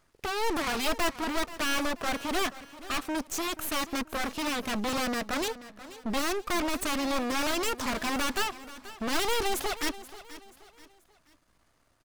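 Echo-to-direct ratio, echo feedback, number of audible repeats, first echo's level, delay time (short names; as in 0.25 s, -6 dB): -15.5 dB, 38%, 3, -16.0 dB, 0.482 s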